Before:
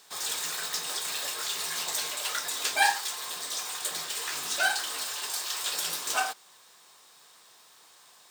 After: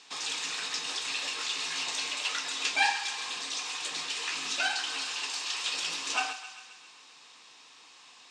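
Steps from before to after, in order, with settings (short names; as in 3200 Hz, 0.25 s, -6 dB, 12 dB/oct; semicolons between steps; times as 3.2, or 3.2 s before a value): in parallel at 0 dB: compressor, threshold -38 dBFS, peak gain reduction 18 dB; on the sum: speaker cabinet 120–6800 Hz, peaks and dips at 180 Hz -5 dB, 270 Hz +7 dB, 390 Hz -4 dB, 620 Hz -7 dB, 1500 Hz -4 dB, 2600 Hz +8 dB; thinning echo 0.133 s, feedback 63%, high-pass 680 Hz, level -11 dB; gain -3.5 dB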